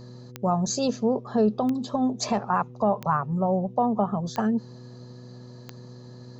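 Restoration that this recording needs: de-click; de-hum 123.3 Hz, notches 4

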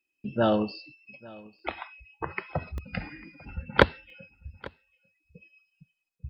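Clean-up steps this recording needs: interpolate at 1.59/2.78/4.10 s, 1.3 ms; inverse comb 846 ms -22.5 dB

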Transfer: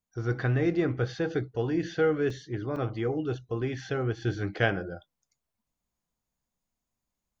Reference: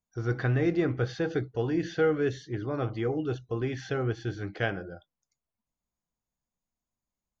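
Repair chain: interpolate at 2.30/2.76 s, 3.4 ms; trim 0 dB, from 4.22 s -4 dB

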